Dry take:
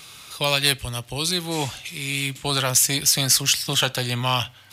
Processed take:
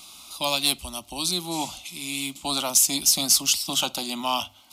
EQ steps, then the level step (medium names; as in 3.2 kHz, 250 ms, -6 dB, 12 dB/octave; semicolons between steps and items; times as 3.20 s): hum notches 50/100/150 Hz; static phaser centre 460 Hz, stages 6; 0.0 dB